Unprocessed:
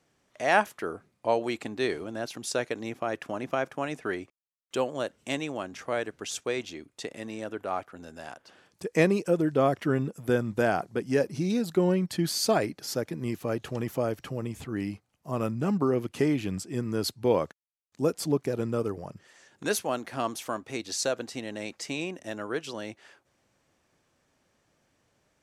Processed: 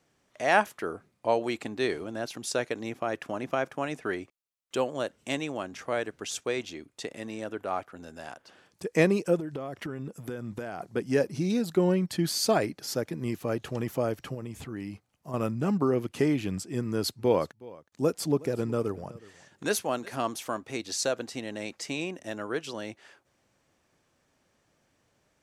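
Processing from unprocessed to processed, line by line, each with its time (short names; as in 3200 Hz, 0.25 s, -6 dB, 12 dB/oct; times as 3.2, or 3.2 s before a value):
9.36–10.81 compressor 12:1, threshold -31 dBFS
14.34–15.34 compressor 2:1, threshold -36 dBFS
16.82–20.19 echo 0.368 s -21 dB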